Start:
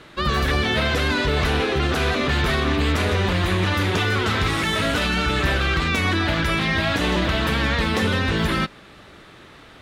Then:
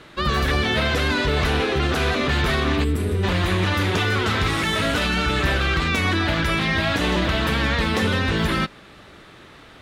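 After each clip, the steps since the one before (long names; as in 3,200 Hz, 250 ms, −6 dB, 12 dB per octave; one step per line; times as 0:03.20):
gain on a spectral selection 0:02.84–0:03.23, 480–7,500 Hz −13 dB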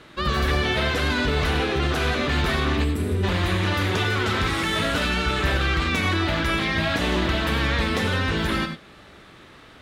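reverb whose tail is shaped and stops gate 120 ms rising, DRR 8 dB
level −2.5 dB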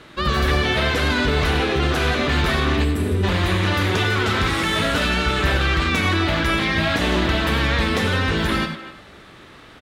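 far-end echo of a speakerphone 250 ms, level −13 dB
level +3 dB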